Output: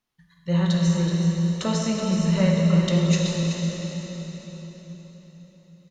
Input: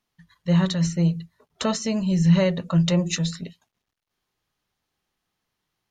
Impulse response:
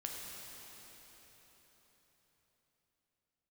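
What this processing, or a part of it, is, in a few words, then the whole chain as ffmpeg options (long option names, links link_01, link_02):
cave: -filter_complex "[0:a]aecho=1:1:376:0.335[link_01];[1:a]atrim=start_sample=2205[link_02];[link_01][link_02]afir=irnorm=-1:irlink=0"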